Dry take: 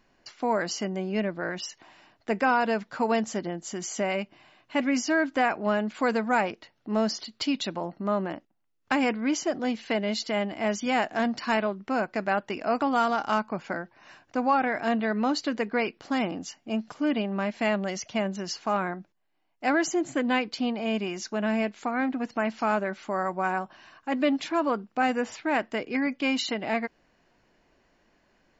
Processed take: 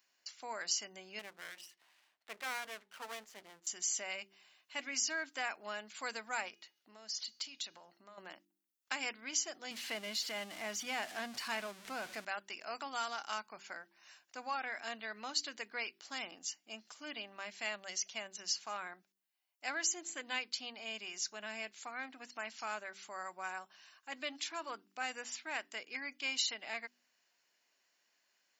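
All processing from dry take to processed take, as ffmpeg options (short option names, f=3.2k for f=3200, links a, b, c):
-filter_complex "[0:a]asettb=1/sr,asplit=3[a][b][c];[a]atrim=end=1.194[d];[b]atrim=start=1.19:end=3.67,asetpts=PTS-STARTPTS,afade=t=in:d=0.004:c=qsin,afade=t=out:st=2.476:d=0.004:c=qsin,lowpass=2.4k,bandreject=f=60:t=h:w=6,bandreject=f=120:t=h:w=6,bandreject=f=180:t=h:w=6,bandreject=f=240:t=h:w=6,bandreject=f=300:t=h:w=6,bandreject=f=360:t=h:w=6,bandreject=f=420:t=h:w=6,bandreject=f=480:t=h:w=6,bandreject=f=540:t=h:w=6,aeval=exprs='max(val(0),0)':c=same[e];[c]atrim=start=3.666[f];[d][e]acrossfade=d=0.004:c1=hsin:c2=qsin[g];[g][f]acrossfade=d=0.004:c1=qsin:c2=hsin,asettb=1/sr,asplit=3[h][i][j];[h]atrim=end=6.484[k];[i]atrim=start=6.48:end=8.18,asetpts=PTS-STARTPTS,afade=t=in:d=0.004:c=qsin,afade=t=out:st=1.696:d=0.004:c=qsin,acompressor=threshold=-33dB:ratio=8:attack=3.2:release=140:knee=1:detection=peak,bandreject=f=414.6:t=h:w=4,bandreject=f=829.2:t=h:w=4,bandreject=f=1.2438k:t=h:w=4,bandreject=f=1.6584k:t=h:w=4,bandreject=f=2.073k:t=h:w=4,bandreject=f=2.4876k:t=h:w=4,bandreject=f=2.9022k:t=h:w=4,bandreject=f=3.3168k:t=h:w=4,bandreject=f=3.7314k:t=h:w=4,bandreject=f=4.146k:t=h:w=4,bandreject=f=4.5606k:t=h:w=4,bandreject=f=4.9752k:t=h:w=4,bandreject=f=5.3898k:t=h:w=4,bandreject=f=5.8044k:t=h:w=4,bandreject=f=6.219k:t=h:w=4,bandreject=f=6.6336k:t=h:w=4[l];[j]atrim=start=8.176[m];[k][l]acrossfade=d=0.004:c1=hsin:c2=qsin[n];[n][m]acrossfade=d=0.004:c1=qsin:c2=hsin,asettb=1/sr,asplit=3[o][p][q];[o]atrim=end=9.714[r];[p]atrim=start=9.71:end=12.25,asetpts=PTS-STARTPTS,afade=t=in:d=0.004:c=qsin,afade=t=out:st=2.536:d=0.004:c=qsin,aeval=exprs='val(0)+0.5*0.0251*sgn(val(0))':c=same,aemphasis=mode=reproduction:type=bsi[s];[q]atrim=start=12.246[t];[r][s]acrossfade=d=0.004:c1=hsin:c2=qsin[u];[u][t]acrossfade=d=0.004:c1=qsin:c2=hsin,aderivative,bandreject=f=48.71:t=h:w=4,bandreject=f=97.42:t=h:w=4,bandreject=f=146.13:t=h:w=4,bandreject=f=194.84:t=h:w=4,bandreject=f=243.55:t=h:w=4,bandreject=f=292.26:t=h:w=4,bandreject=f=340.97:t=h:w=4,bandreject=f=389.68:t=h:w=4,volume=2dB"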